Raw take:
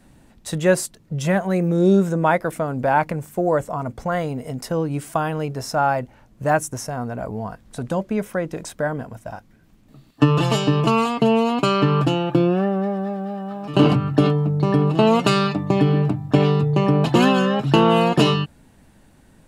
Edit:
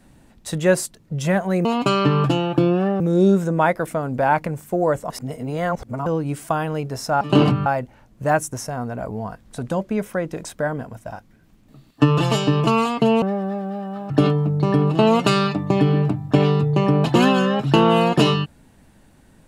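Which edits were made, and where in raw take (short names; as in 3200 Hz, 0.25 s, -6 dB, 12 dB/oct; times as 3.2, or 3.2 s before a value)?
3.75–4.71 reverse
11.42–12.77 move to 1.65
13.65–14.1 move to 5.86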